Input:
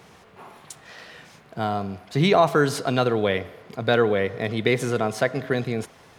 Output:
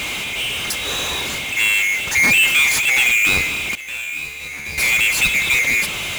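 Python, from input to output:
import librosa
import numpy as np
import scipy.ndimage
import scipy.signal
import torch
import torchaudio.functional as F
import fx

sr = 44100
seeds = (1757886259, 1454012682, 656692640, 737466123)

y = fx.band_swap(x, sr, width_hz=2000)
y = scipy.signal.sosfilt(scipy.signal.butter(2, 53.0, 'highpass', fs=sr, output='sos'), y)
y = fx.low_shelf(y, sr, hz=70.0, db=8.5)
y = fx.power_curve(y, sr, exponent=0.35)
y = fx.comb_fb(y, sr, f0_hz=73.0, decay_s=1.0, harmonics='all', damping=0.0, mix_pct=90, at=(3.75, 4.78))
y = y * 10.0 ** (-3.0 / 20.0)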